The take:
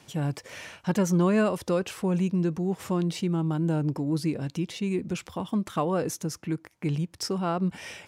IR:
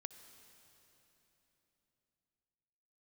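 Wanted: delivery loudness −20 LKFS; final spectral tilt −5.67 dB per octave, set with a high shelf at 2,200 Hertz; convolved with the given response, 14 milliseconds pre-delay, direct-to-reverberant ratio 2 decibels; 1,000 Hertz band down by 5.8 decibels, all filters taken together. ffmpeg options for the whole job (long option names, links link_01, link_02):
-filter_complex "[0:a]equalizer=frequency=1000:width_type=o:gain=-8.5,highshelf=frequency=2200:gain=4,asplit=2[link_01][link_02];[1:a]atrim=start_sample=2205,adelay=14[link_03];[link_02][link_03]afir=irnorm=-1:irlink=0,volume=2.5dB[link_04];[link_01][link_04]amix=inputs=2:normalize=0,volume=7dB"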